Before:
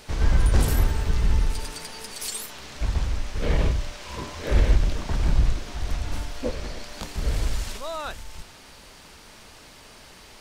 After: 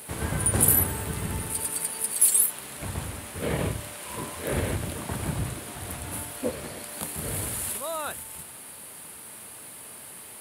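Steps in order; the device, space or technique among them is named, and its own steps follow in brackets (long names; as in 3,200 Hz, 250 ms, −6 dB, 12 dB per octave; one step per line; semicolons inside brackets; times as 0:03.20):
budget condenser microphone (high-pass filter 93 Hz 24 dB per octave; high shelf with overshoot 7,800 Hz +12 dB, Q 3)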